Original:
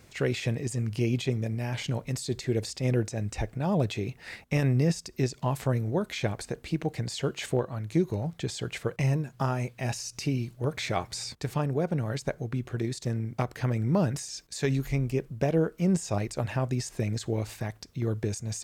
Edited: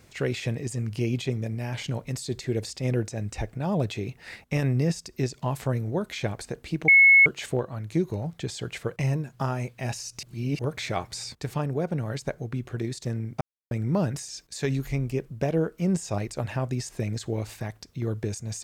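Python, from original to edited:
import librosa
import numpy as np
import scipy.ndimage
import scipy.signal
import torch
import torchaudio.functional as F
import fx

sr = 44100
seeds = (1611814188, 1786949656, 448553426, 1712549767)

y = fx.edit(x, sr, fx.bleep(start_s=6.88, length_s=0.38, hz=2190.0, db=-11.5),
    fx.reverse_span(start_s=10.23, length_s=0.36),
    fx.silence(start_s=13.41, length_s=0.3), tone=tone)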